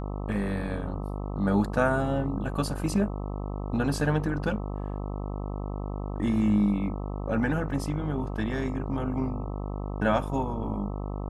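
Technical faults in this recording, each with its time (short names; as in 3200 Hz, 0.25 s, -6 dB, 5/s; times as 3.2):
buzz 50 Hz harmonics 26 -33 dBFS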